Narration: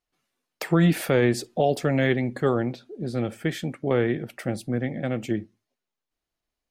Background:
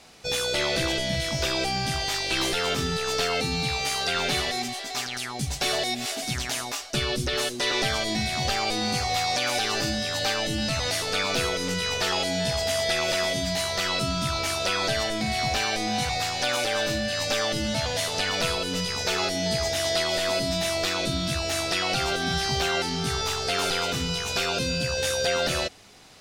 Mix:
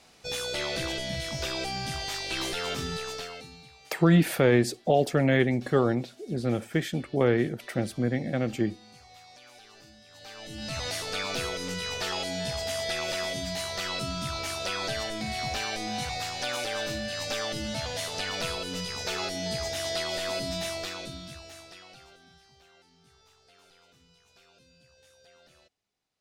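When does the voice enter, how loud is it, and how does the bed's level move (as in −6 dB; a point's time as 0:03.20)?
3.30 s, −0.5 dB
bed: 0:02.99 −6 dB
0:03.73 −26.5 dB
0:10.05 −26.5 dB
0:10.78 −6 dB
0:20.64 −6 dB
0:22.51 −34 dB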